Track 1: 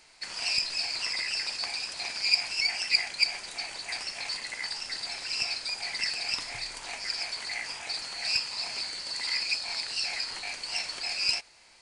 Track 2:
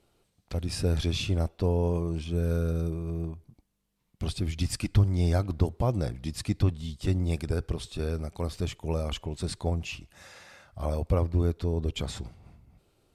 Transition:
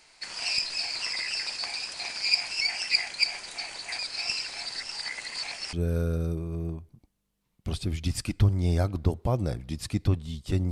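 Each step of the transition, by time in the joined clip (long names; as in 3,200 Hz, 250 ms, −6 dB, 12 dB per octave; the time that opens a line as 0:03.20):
track 1
0:03.99–0:05.73: reverse
0:05.73: continue with track 2 from 0:02.28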